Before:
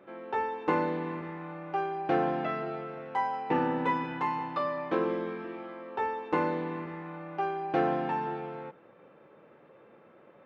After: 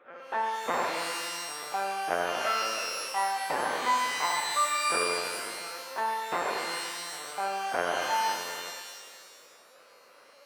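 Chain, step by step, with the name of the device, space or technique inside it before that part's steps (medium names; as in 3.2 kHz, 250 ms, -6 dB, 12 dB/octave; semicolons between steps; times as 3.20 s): talking toy (LPC vocoder at 8 kHz pitch kept; high-pass 490 Hz 12 dB/octave; peaking EQ 1.5 kHz +6 dB 0.53 oct); pitch-shifted reverb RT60 1.4 s, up +12 st, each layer -2 dB, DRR 4 dB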